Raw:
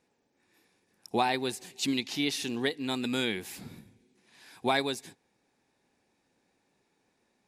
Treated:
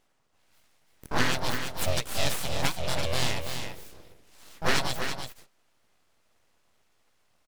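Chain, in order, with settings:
pitch-shifted copies added +5 semitones −2 dB
full-wave rectification
single-tap delay 333 ms −7 dB
level +2.5 dB

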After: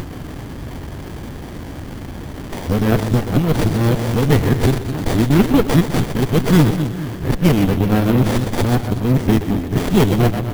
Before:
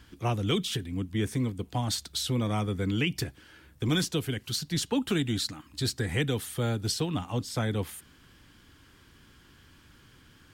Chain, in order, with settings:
played backwards from end to start
upward compression, threshold −32 dBFS
echo with a time of its own for lows and highs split 340 Hz, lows 211 ms, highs 125 ms, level −8 dB
bad sample-rate conversion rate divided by 3×, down none, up zero stuff
windowed peak hold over 33 samples
level +7 dB

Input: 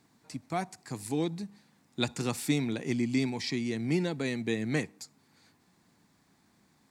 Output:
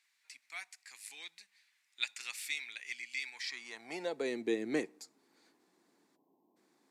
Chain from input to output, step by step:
time-frequency box erased 0:06.16–0:06.57, 1,100–12,000 Hz
high-pass filter sweep 2,200 Hz → 350 Hz, 0:03.22–0:04.36
level −6 dB
Ogg Vorbis 128 kbit/s 32,000 Hz

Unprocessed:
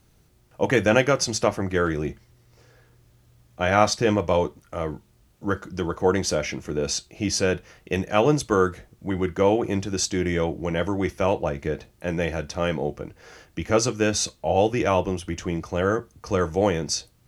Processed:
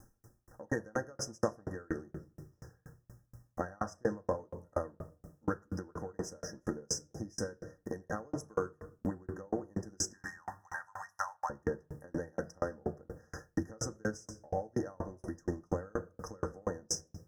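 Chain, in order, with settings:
in parallel at −4 dB: dead-zone distortion −37.5 dBFS
0:10.13–0:11.50: on the sum: elliptic high-pass filter 860 Hz, stop band 60 dB
downward compressor 6 to 1, threshold −32 dBFS, peak gain reduction 22.5 dB
brick-wall band-stop 1,900–5,000 Hz
on a send at −4 dB: convolution reverb RT60 1.4 s, pre-delay 4 ms
on the sum: tremolo with a ramp in dB decaying 4.2 Hz, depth 37 dB
level +4.5 dB

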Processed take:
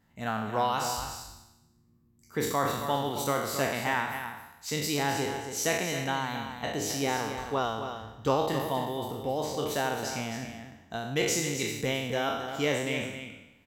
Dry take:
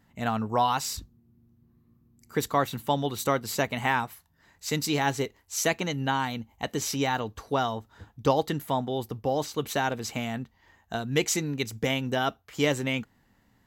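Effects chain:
peak hold with a decay on every bin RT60 0.93 s
single-tap delay 268 ms −8.5 dB
level −5.5 dB

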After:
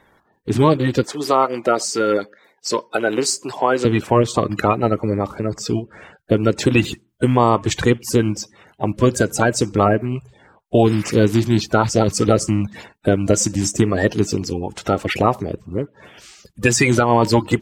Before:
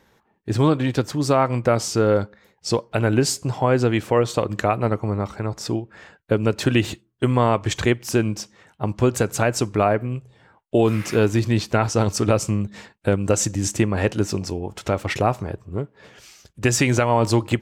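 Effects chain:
spectral magnitudes quantised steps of 30 dB
0:01.03–0:03.85: high-pass filter 370 Hz 12 dB per octave
level +4 dB

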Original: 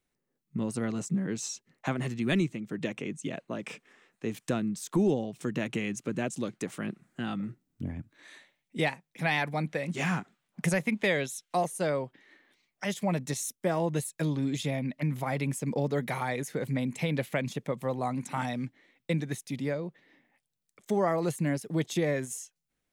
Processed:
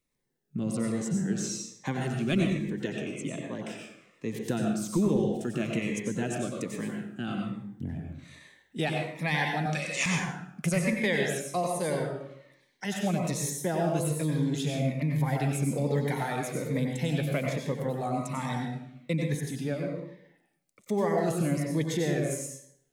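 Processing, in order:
0:09.66–0:10.06: meter weighting curve ITU-R 468
dense smooth reverb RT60 0.74 s, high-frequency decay 0.7×, pre-delay 80 ms, DRR 0.5 dB
phaser whose notches keep moving one way falling 1.2 Hz

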